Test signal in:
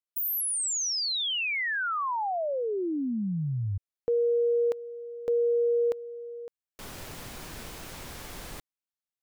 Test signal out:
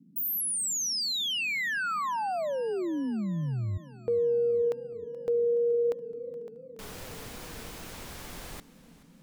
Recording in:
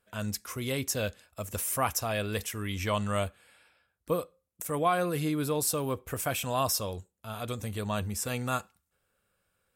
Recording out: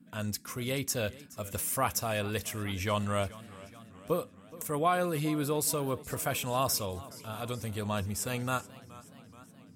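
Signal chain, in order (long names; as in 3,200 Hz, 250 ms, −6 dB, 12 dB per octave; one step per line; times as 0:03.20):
noise in a band 150–280 Hz −56 dBFS
feedback echo with a swinging delay time 425 ms, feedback 62%, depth 112 cents, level −19 dB
level −1 dB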